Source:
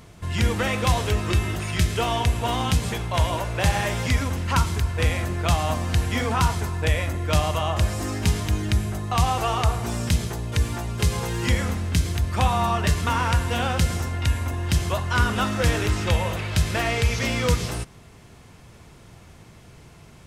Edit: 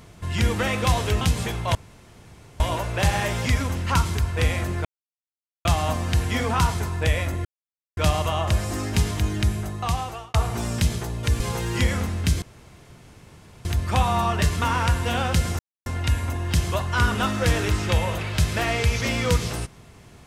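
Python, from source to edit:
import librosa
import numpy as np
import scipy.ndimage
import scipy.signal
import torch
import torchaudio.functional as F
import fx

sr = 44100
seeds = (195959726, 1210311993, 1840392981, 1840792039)

y = fx.edit(x, sr, fx.cut(start_s=1.21, length_s=1.46),
    fx.insert_room_tone(at_s=3.21, length_s=0.85),
    fx.insert_silence(at_s=5.46, length_s=0.8),
    fx.insert_silence(at_s=7.26, length_s=0.52),
    fx.fade_out_span(start_s=8.63, length_s=1.0, curve='qsin'),
    fx.cut(start_s=10.69, length_s=0.39),
    fx.insert_room_tone(at_s=12.1, length_s=1.23),
    fx.insert_silence(at_s=14.04, length_s=0.27), tone=tone)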